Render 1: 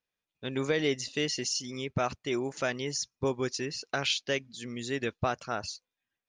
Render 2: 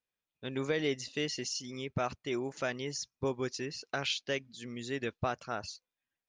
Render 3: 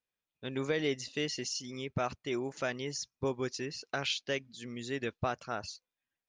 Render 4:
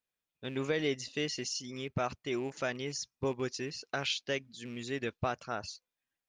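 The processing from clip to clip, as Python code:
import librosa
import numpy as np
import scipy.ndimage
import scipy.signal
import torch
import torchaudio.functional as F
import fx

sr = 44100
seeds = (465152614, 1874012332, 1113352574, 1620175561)

y1 = fx.high_shelf(x, sr, hz=8200.0, db=-7.0)
y1 = y1 * 10.0 ** (-3.5 / 20.0)
y2 = y1
y3 = fx.rattle_buzz(y2, sr, strikes_db=-42.0, level_db=-42.0)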